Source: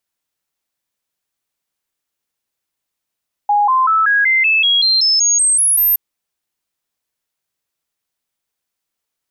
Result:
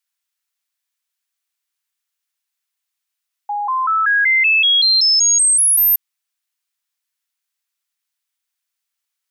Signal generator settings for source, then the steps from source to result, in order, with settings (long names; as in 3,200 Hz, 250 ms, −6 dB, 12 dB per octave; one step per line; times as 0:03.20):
stepped sweep 825 Hz up, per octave 3, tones 13, 0.19 s, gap 0.00 s −10 dBFS
high-pass filter 1,300 Hz 12 dB per octave